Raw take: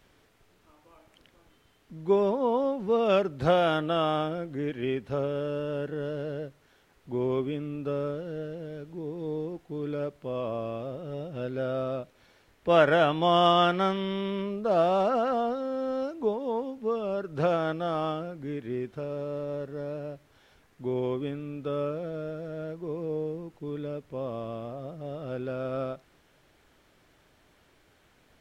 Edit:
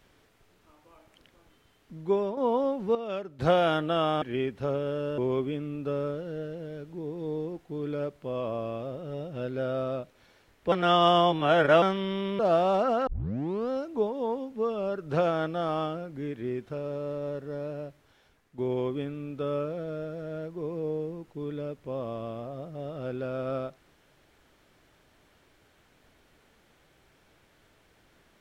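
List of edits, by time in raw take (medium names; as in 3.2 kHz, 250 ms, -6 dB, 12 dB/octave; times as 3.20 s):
1.97–2.37 s: fade out, to -8.5 dB
2.95–3.39 s: gain -10.5 dB
4.22–4.71 s: delete
5.67–7.18 s: delete
12.72–13.82 s: reverse
14.39–14.65 s: delete
15.33 s: tape start 0.63 s
20.08–20.84 s: fade out, to -8 dB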